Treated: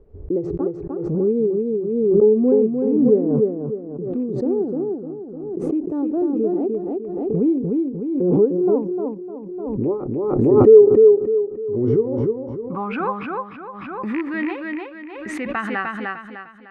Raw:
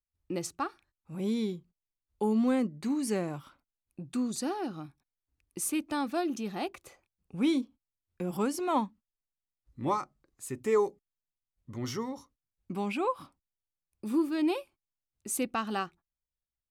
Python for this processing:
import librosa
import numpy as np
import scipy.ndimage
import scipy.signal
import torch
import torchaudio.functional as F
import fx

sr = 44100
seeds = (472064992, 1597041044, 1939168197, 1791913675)

p1 = fx.rattle_buzz(x, sr, strikes_db=-32.0, level_db=-26.0)
p2 = fx.air_absorb(p1, sr, metres=160.0, at=(2.7, 3.27))
p3 = fx.rider(p2, sr, range_db=4, speed_s=0.5)
p4 = p2 + (p3 * librosa.db_to_amplitude(-2.0))
p5 = fx.filter_sweep_lowpass(p4, sr, from_hz=430.0, to_hz=1900.0, start_s=12.03, end_s=13.19, q=7.3)
p6 = p5 + fx.echo_feedback(p5, sr, ms=302, feedback_pct=37, wet_db=-3.0, dry=0)
p7 = fx.pre_swell(p6, sr, db_per_s=33.0)
y = p7 * librosa.db_to_amplitude(-3.0)